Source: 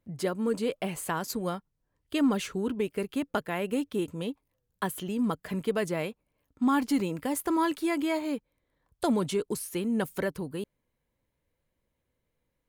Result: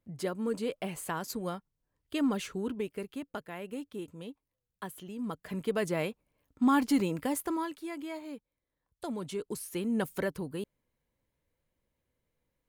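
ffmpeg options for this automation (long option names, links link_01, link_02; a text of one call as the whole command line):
ffmpeg -i in.wav -af "volume=15dB,afade=type=out:start_time=2.66:duration=0.61:silence=0.501187,afade=type=in:start_time=5.17:duration=0.86:silence=0.316228,afade=type=out:start_time=7.21:duration=0.49:silence=0.281838,afade=type=in:start_time=9.14:duration=0.78:silence=0.354813" out.wav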